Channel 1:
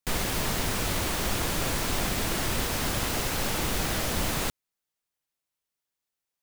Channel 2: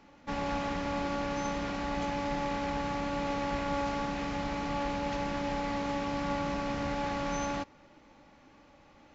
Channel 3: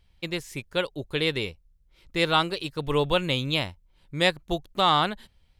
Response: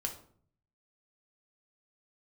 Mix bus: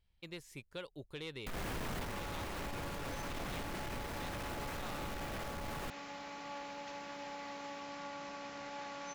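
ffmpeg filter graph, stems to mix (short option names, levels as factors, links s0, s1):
-filter_complex "[0:a]acrossover=split=2600[s0][s1];[s1]acompressor=threshold=0.00891:ratio=4:attack=1:release=60[s2];[s0][s2]amix=inputs=2:normalize=0,adelay=1400,volume=1.26[s3];[1:a]highpass=f=630:p=1,highshelf=f=5600:g=5.5,adelay=1750,volume=0.355[s4];[2:a]volume=0.2[s5];[s3][s5]amix=inputs=2:normalize=0,asoftclip=type=tanh:threshold=0.0355,acompressor=threshold=0.0126:ratio=6,volume=1[s6];[s4][s6]amix=inputs=2:normalize=0,alimiter=level_in=3.16:limit=0.0631:level=0:latency=1:release=107,volume=0.316"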